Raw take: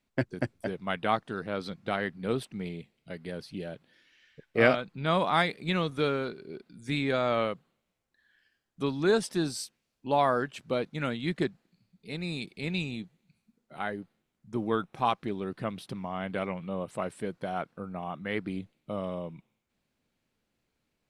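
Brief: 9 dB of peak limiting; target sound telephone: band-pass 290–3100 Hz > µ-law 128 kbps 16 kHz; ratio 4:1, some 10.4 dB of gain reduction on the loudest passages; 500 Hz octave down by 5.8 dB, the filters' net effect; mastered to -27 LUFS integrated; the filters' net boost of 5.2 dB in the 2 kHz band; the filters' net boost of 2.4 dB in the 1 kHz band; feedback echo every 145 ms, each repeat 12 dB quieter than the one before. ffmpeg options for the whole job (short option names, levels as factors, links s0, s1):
-af "equalizer=f=500:t=o:g=-8.5,equalizer=f=1000:t=o:g=4,equalizer=f=2000:t=o:g=6.5,acompressor=threshold=0.0447:ratio=4,alimiter=limit=0.0841:level=0:latency=1,highpass=290,lowpass=3100,aecho=1:1:145|290|435:0.251|0.0628|0.0157,volume=3.35" -ar 16000 -c:a pcm_mulaw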